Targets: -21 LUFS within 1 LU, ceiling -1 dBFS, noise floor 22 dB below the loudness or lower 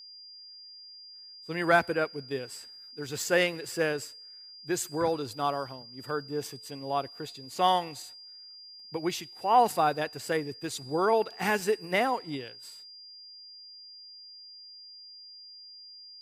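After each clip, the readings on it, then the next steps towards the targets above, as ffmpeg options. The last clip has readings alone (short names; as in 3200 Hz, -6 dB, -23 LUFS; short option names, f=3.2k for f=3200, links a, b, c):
steady tone 4800 Hz; tone level -46 dBFS; loudness -29.5 LUFS; peak -9.5 dBFS; loudness target -21.0 LUFS
-> -af "bandreject=f=4.8k:w=30"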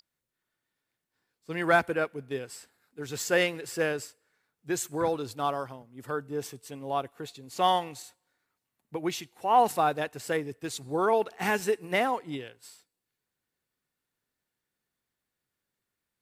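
steady tone none; loudness -29.0 LUFS; peak -9.5 dBFS; loudness target -21.0 LUFS
-> -af "volume=8dB"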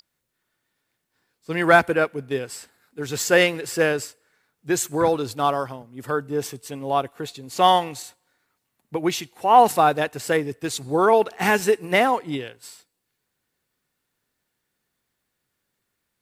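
loudness -21.0 LUFS; peak -1.5 dBFS; noise floor -78 dBFS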